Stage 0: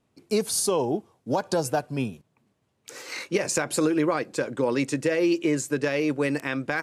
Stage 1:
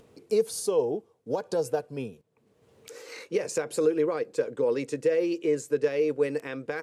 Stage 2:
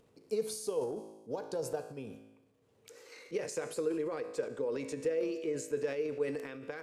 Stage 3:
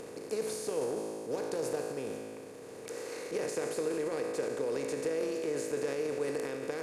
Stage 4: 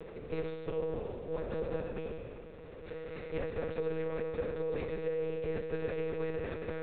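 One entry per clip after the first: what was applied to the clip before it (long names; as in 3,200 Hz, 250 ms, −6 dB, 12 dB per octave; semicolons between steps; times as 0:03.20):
parametric band 460 Hz +14.5 dB 0.37 octaves; upward compression, threshold −32 dBFS; level −9 dB
tuned comb filter 54 Hz, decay 1.1 s, harmonics all, mix 60%; transient designer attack +3 dB, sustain +8 dB; level −4.5 dB
compressor on every frequency bin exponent 0.4; level −4 dB
one-pitch LPC vocoder at 8 kHz 160 Hz; level −1.5 dB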